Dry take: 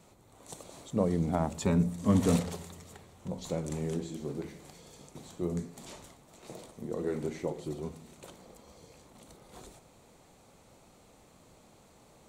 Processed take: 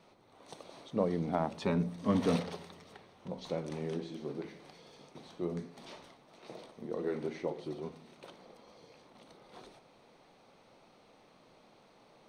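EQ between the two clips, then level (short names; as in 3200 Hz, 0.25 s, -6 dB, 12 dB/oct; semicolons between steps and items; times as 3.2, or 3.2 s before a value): polynomial smoothing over 15 samples; bell 62 Hz -13 dB 1.1 oct; low shelf 190 Hz -7.5 dB; 0.0 dB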